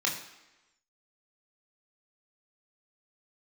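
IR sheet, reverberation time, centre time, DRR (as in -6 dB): 1.0 s, 30 ms, -2.5 dB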